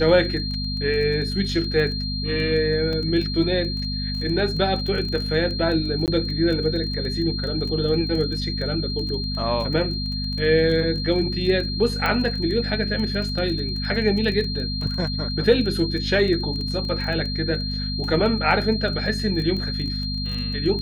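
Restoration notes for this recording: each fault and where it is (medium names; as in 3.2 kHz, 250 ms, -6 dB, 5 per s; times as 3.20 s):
crackle 16 per s -28 dBFS
hum 50 Hz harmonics 5 -28 dBFS
whine 4.2 kHz -29 dBFS
2.93 s: dropout 2.3 ms
6.06–6.08 s: dropout 18 ms
12.06 s: pop -10 dBFS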